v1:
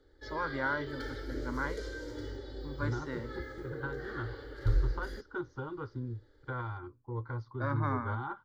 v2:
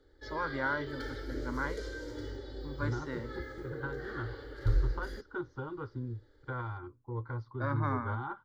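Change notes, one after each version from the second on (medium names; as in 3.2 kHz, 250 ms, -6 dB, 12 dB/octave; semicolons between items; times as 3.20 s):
second voice: add distance through air 70 m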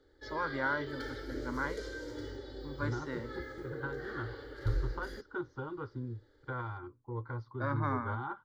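master: add bass shelf 71 Hz -7.5 dB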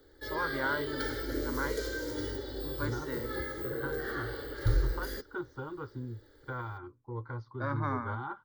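background +5.5 dB; master: remove distance through air 59 m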